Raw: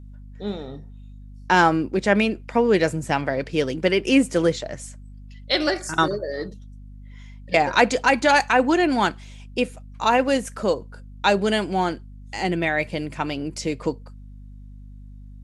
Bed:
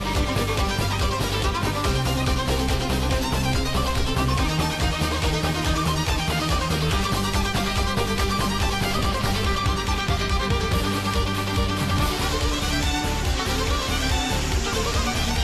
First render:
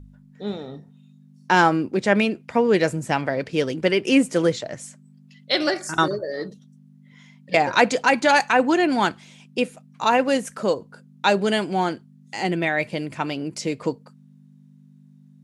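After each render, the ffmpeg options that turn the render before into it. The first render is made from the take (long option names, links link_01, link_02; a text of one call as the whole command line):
ffmpeg -i in.wav -af "bandreject=frequency=50:width_type=h:width=4,bandreject=frequency=100:width_type=h:width=4" out.wav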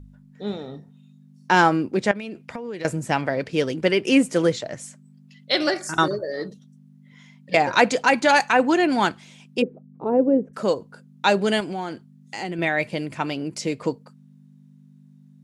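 ffmpeg -i in.wav -filter_complex "[0:a]asettb=1/sr,asplit=3[link_01][link_02][link_03];[link_01]atrim=end=2.114[link_04];[link_02]atrim=start=2.11:end=2.85,asetpts=PTS-STARTPTS,afade=type=in:duration=0.004:curve=qsin,afade=type=out:start_time=0.736:duration=0.004:curve=qsin,acompressor=threshold=-28dB:ratio=16:attack=3.2:release=140:knee=1:detection=peak[link_05];[link_03]atrim=start=2.846[link_06];[link_04][link_05]acrossfade=duration=0.004:curve1=hsin:curve2=qsin[link_07];[link_07][link_06]acrossfade=duration=0.004:curve1=qsin:curve2=hsin,asplit=3[link_08][link_09][link_10];[link_08]afade=type=out:start_time=9.61:duration=0.02[link_11];[link_09]lowpass=frequency=400:width_type=q:width=3.2,afade=type=in:start_time=9.61:duration=0.02,afade=type=out:start_time=10.53:duration=0.02[link_12];[link_10]afade=type=in:start_time=10.53:duration=0.02[link_13];[link_11][link_12][link_13]amix=inputs=3:normalize=0,asettb=1/sr,asplit=3[link_14][link_15][link_16];[link_14]atrim=end=11.604[link_17];[link_15]atrim=start=11.6:end=12.59,asetpts=PTS-STARTPTS,afade=type=in:duration=0.004:curve=qsin,afade=type=out:start_time=0.986:duration=0.004:curve=qsin,acompressor=threshold=-27dB:ratio=3:attack=3.2:release=140:knee=1:detection=peak[link_18];[link_16]atrim=start=12.586[link_19];[link_17][link_18]acrossfade=duration=0.004:curve1=hsin:curve2=qsin[link_20];[link_20][link_19]acrossfade=duration=0.004:curve1=qsin:curve2=hsin" out.wav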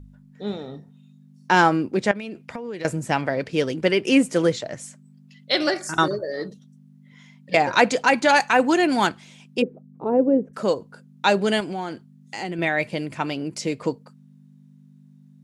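ffmpeg -i in.wav -filter_complex "[0:a]asettb=1/sr,asplit=3[link_01][link_02][link_03];[link_01]atrim=end=8.524[link_04];[link_02]atrim=start=8.52:end=9.07,asetpts=PTS-STARTPTS,afade=type=in:duration=0.004:curve=qsin,afade=type=out:start_time=0.546:duration=0.004:curve=qsin,highshelf=frequency=7300:gain=10[link_05];[link_03]atrim=start=9.066[link_06];[link_04][link_05]acrossfade=duration=0.004:curve1=hsin:curve2=qsin[link_07];[link_07][link_06]acrossfade=duration=0.004:curve1=qsin:curve2=hsin" out.wav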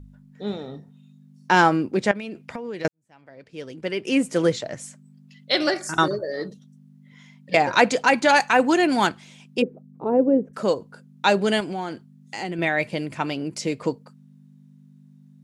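ffmpeg -i in.wav -filter_complex "[0:a]asplit=2[link_01][link_02];[link_01]atrim=end=2.88,asetpts=PTS-STARTPTS,afade=type=out:start_time=2.876:duration=0.004:curve=hsin[link_03];[link_02]atrim=start=2.88,asetpts=PTS-STARTPTS,afade=type=in:duration=1.6:curve=qua[link_04];[link_03][link_04]concat=n=2:v=0:a=1" out.wav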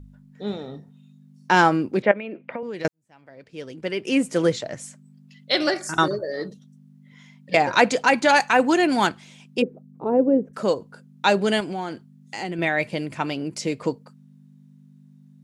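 ffmpeg -i in.wav -filter_complex "[0:a]asettb=1/sr,asplit=3[link_01][link_02][link_03];[link_01]atrim=end=2.024[link_04];[link_02]atrim=start=2.02:end=2.63,asetpts=PTS-STARTPTS,afade=type=in:duration=0.004:curve=qsin,afade=type=out:start_time=0.606:duration=0.004:curve=qsin,highpass=200,equalizer=frequency=320:width_type=q:width=4:gain=4,equalizer=frequency=550:width_type=q:width=4:gain=9,equalizer=frequency=2200:width_type=q:width=4:gain=4,lowpass=frequency=2800:width=0.5412,lowpass=frequency=2800:width=1.3066[link_05];[link_03]atrim=start=2.626[link_06];[link_04][link_05]acrossfade=duration=0.004:curve1=hsin:curve2=qsin[link_07];[link_07][link_06]acrossfade=duration=0.004:curve1=qsin:curve2=hsin" out.wav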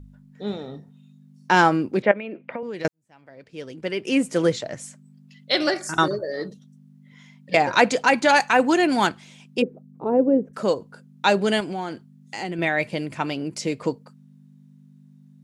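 ffmpeg -i in.wav -af anull out.wav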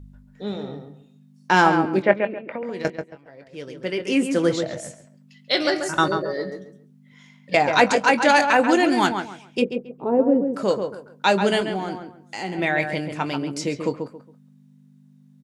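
ffmpeg -i in.wav -filter_complex "[0:a]asplit=2[link_01][link_02];[link_02]adelay=21,volume=-11.5dB[link_03];[link_01][link_03]amix=inputs=2:normalize=0,asplit=2[link_04][link_05];[link_05]adelay=137,lowpass=frequency=2000:poles=1,volume=-6dB,asplit=2[link_06][link_07];[link_07]adelay=137,lowpass=frequency=2000:poles=1,volume=0.27,asplit=2[link_08][link_09];[link_09]adelay=137,lowpass=frequency=2000:poles=1,volume=0.27[link_10];[link_04][link_06][link_08][link_10]amix=inputs=4:normalize=0" out.wav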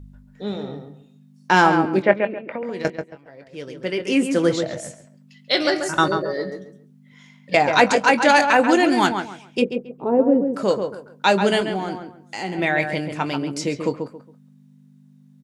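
ffmpeg -i in.wav -af "volume=1.5dB,alimiter=limit=-1dB:level=0:latency=1" out.wav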